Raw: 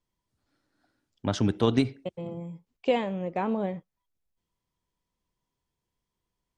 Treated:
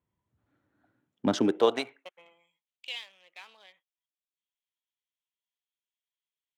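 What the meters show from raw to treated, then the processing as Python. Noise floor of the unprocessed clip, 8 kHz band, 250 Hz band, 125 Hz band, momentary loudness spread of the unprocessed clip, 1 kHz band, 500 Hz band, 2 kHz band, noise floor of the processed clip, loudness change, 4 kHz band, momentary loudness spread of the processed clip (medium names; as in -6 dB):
-85 dBFS, no reading, -4.0 dB, -13.5 dB, 14 LU, -3.5 dB, -1.0 dB, -1.5 dB, under -85 dBFS, 0.0 dB, +1.0 dB, 19 LU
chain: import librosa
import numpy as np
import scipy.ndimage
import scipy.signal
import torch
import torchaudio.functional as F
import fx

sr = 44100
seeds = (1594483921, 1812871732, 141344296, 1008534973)

y = fx.wiener(x, sr, points=9)
y = fx.filter_sweep_highpass(y, sr, from_hz=87.0, to_hz=3500.0, start_s=0.84, end_s=2.52, q=1.7)
y = y * 10.0 ** (1.0 / 20.0)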